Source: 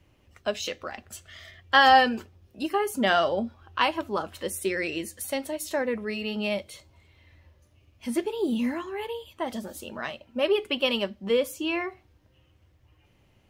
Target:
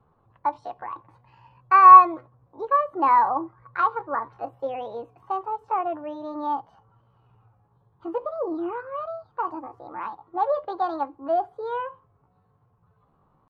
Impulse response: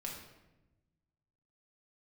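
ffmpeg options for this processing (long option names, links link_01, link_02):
-af "asetrate=62367,aresample=44100,atempo=0.707107,lowpass=frequency=1100:width_type=q:width=4.5,volume=-3.5dB"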